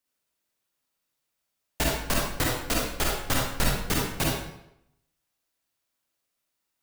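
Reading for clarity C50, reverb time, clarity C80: -1.0 dB, 0.80 s, 4.0 dB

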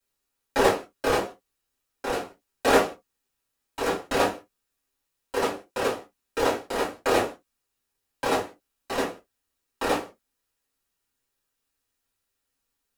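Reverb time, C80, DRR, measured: not exponential, 24.5 dB, -7.5 dB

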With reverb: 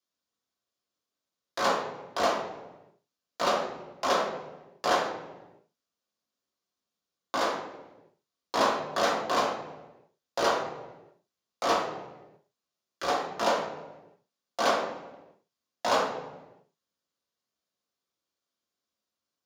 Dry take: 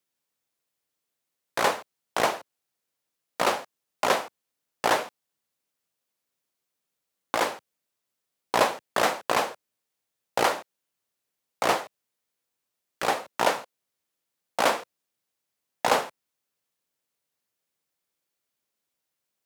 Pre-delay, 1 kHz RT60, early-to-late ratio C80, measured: 3 ms, 0.95 s, 7.0 dB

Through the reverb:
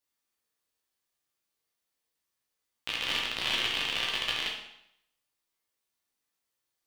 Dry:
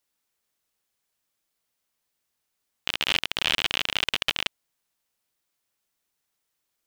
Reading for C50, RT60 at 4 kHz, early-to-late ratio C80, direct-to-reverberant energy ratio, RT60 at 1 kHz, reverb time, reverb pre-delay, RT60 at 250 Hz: 3.5 dB, 0.70 s, 6.5 dB, -3.0 dB, 0.75 s, 0.75 s, 8 ms, 0.70 s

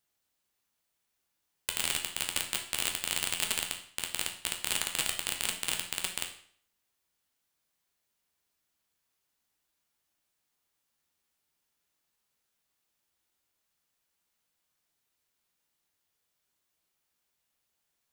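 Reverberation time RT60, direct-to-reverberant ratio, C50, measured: 0.55 s, 2.0 dB, 8.5 dB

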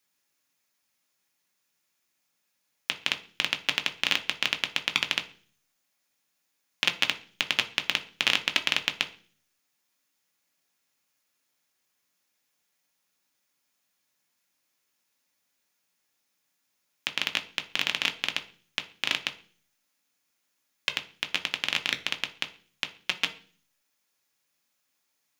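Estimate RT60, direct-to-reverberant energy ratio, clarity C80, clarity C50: 0.45 s, 5.0 dB, 20.5 dB, 15.5 dB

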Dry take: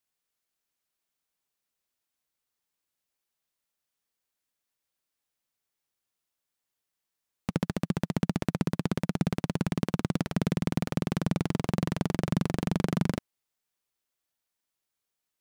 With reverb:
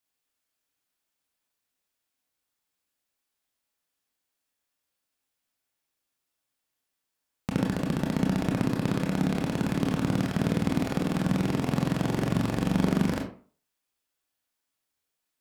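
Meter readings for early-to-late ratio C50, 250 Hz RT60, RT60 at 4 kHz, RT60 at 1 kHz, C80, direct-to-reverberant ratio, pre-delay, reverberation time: 6.5 dB, 0.40 s, 0.25 s, 0.45 s, 11.0 dB, -0.5 dB, 22 ms, 0.45 s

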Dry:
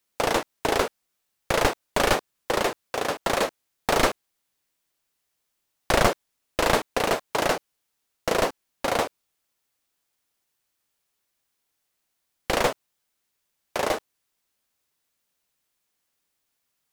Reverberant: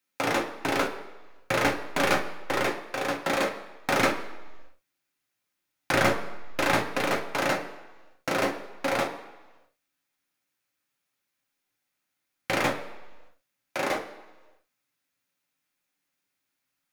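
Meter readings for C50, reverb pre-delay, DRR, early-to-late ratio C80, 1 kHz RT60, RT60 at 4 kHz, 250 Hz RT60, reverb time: 10.5 dB, 3 ms, 2.5 dB, 12.5 dB, 1.2 s, 1.2 s, 1.0 s, 1.2 s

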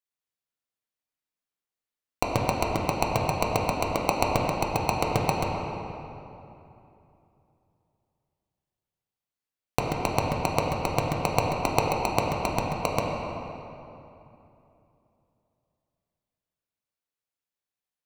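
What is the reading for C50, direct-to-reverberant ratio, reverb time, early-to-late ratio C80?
0.5 dB, -2.0 dB, 2.9 s, 1.5 dB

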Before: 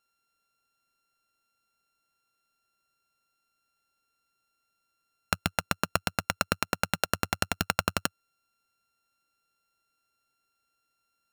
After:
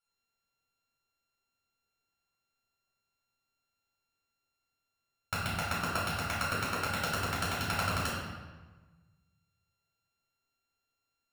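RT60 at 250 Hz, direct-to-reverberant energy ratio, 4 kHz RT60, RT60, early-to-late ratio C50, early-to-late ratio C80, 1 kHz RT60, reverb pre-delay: 1.6 s, -9.0 dB, 0.95 s, 1.3 s, -0.5 dB, 2.5 dB, 1.3 s, 3 ms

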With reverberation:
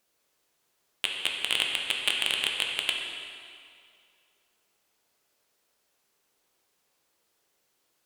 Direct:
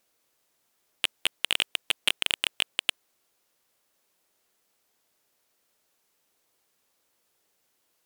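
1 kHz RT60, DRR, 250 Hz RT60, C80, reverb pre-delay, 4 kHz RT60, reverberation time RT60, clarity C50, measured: 2.3 s, -0.5 dB, 2.1 s, 3.0 dB, 7 ms, 2.0 s, 2.3 s, 2.0 dB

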